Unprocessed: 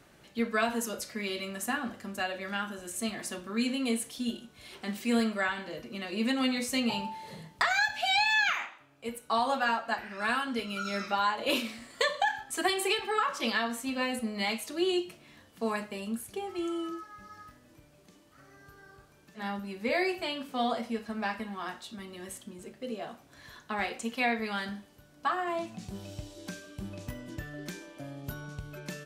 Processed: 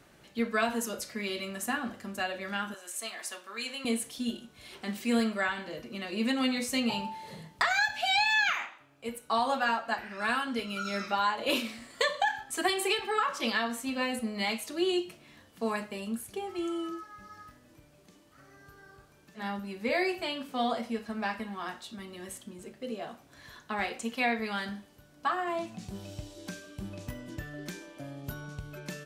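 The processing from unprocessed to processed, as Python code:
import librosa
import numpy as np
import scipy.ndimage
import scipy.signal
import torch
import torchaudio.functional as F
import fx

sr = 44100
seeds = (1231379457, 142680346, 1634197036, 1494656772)

y = fx.highpass(x, sr, hz=690.0, slope=12, at=(2.74, 3.85))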